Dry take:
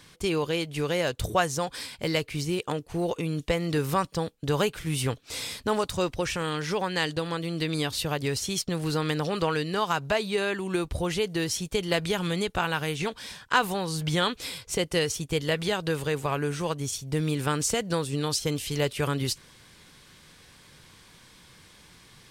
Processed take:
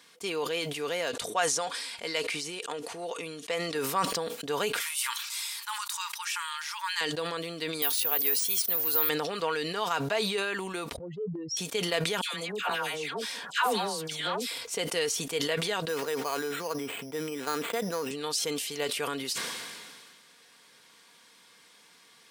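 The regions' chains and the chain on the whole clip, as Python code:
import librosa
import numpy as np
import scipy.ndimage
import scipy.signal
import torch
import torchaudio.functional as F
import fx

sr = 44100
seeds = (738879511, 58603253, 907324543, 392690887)

y = fx.chain(x, sr, fx.lowpass(hz=11000.0, slope=24),
    fx.low_shelf(hz=390.0, db=-6.5), at=(1.12, 3.75))
y = fx.chain(y, sr, fx.brickwall_highpass(low_hz=850.0),
    fx.high_shelf(hz=8700.0, db=10.0), at=(4.8, 7.01))
y = fx.chain(y, sr, fx.lowpass(hz=8700.0, slope=24),
    fx.resample_bad(factor=3, down='none', up='zero_stuff'),
    fx.low_shelf(hz=260.0, db=-10.5), at=(7.82, 9.09))
y = fx.chain(y, sr, fx.spec_expand(power=3.8),
    fx.transient(attack_db=-8, sustain_db=0), at=(10.96, 11.57))
y = fx.chain(y, sr, fx.dispersion(late='lows', ms=129.0, hz=1100.0),
    fx.transformer_sat(knee_hz=570.0), at=(12.21, 14.58))
y = fx.chain(y, sr, fx.highpass(hz=170.0, slope=12),
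    fx.resample_bad(factor=8, down='filtered', up='hold'), at=(15.88, 18.11))
y = scipy.signal.sosfilt(scipy.signal.bessel(2, 420.0, 'highpass', norm='mag', fs=sr, output='sos'), y)
y = y + 0.36 * np.pad(y, (int(4.3 * sr / 1000.0), 0))[:len(y)]
y = fx.sustainer(y, sr, db_per_s=30.0)
y = y * 10.0 ** (-3.5 / 20.0)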